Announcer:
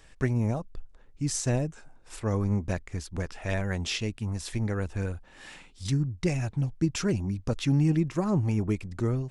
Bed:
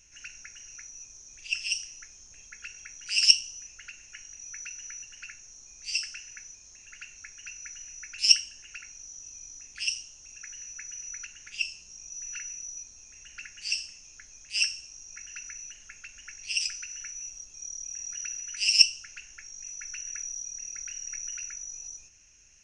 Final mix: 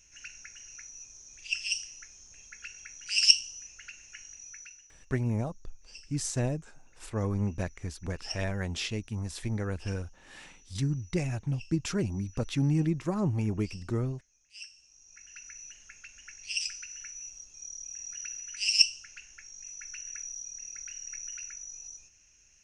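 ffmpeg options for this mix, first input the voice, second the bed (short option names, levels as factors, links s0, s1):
-filter_complex "[0:a]adelay=4900,volume=0.708[s0];[1:a]volume=5.31,afade=t=out:st=4.29:d=0.62:silence=0.125893,afade=t=in:st=14.71:d=1:silence=0.158489[s1];[s0][s1]amix=inputs=2:normalize=0"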